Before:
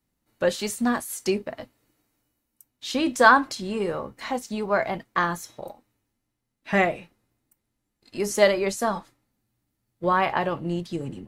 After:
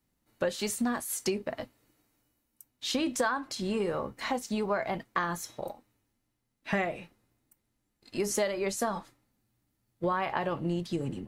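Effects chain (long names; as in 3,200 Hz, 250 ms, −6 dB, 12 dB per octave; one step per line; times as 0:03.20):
downward compressor 8 to 1, threshold −26 dBFS, peak gain reduction 16.5 dB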